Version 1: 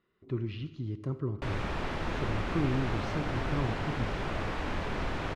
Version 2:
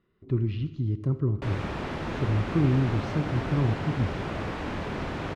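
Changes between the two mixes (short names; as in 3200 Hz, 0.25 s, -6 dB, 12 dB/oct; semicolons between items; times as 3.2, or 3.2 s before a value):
background: add HPF 190 Hz 6 dB/oct; master: add low shelf 320 Hz +10 dB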